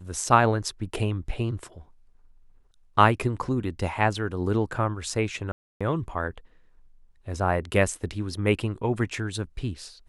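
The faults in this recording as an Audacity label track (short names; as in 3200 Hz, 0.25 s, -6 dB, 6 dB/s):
5.520000	5.810000	gap 0.286 s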